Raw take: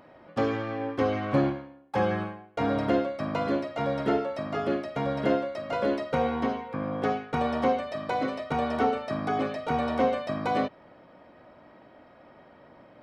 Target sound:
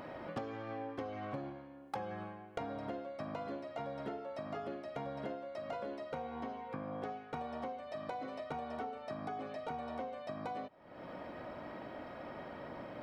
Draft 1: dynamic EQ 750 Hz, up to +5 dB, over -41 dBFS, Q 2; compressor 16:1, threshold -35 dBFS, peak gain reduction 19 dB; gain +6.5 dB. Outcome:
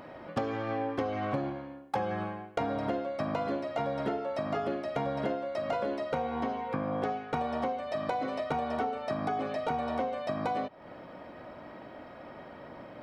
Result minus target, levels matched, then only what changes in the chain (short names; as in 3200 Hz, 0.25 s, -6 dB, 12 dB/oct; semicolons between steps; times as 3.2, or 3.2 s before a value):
compressor: peak gain reduction -10 dB
change: compressor 16:1, threshold -45.5 dBFS, peak gain reduction 29 dB